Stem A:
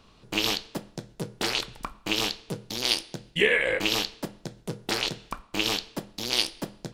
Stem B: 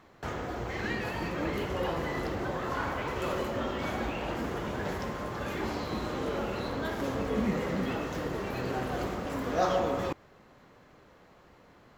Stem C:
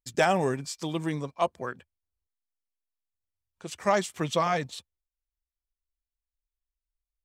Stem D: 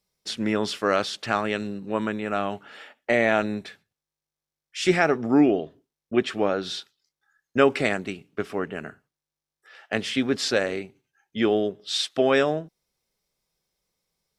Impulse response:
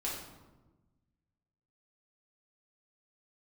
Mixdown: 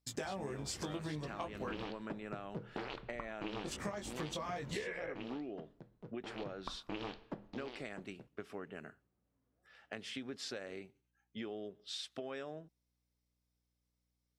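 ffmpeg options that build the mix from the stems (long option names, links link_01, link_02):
-filter_complex "[0:a]lowpass=1600,adelay=1350,volume=2.5dB,afade=type=out:start_time=4.91:duration=0.34:silence=0.298538,afade=type=in:start_time=6.3:duration=0.26:silence=0.316228,afade=type=out:start_time=7.52:duration=0.2:silence=0.316228[link_01];[1:a]acrossover=split=310[link_02][link_03];[link_03]acompressor=threshold=-44dB:ratio=3[link_04];[link_02][link_04]amix=inputs=2:normalize=0,volume=-10.5dB[link_05];[2:a]agate=range=-33dB:threshold=-45dB:ratio=3:detection=peak,acompressor=threshold=-28dB:ratio=6,flanger=delay=19.5:depth=2.1:speed=0.74,volume=1dB,asplit=2[link_06][link_07];[3:a]acompressor=threshold=-26dB:ratio=6,aeval=exprs='val(0)+0.000316*(sin(2*PI*60*n/s)+sin(2*PI*2*60*n/s)/2+sin(2*PI*3*60*n/s)/3+sin(2*PI*4*60*n/s)/4+sin(2*PI*5*60*n/s)/5)':channel_layout=same,volume=-13.5dB[link_08];[link_07]apad=whole_len=528301[link_09];[link_05][link_09]sidechaingate=range=-37dB:threshold=-48dB:ratio=16:detection=peak[link_10];[link_01][link_10][link_06][link_08]amix=inputs=4:normalize=0,acompressor=threshold=-37dB:ratio=12"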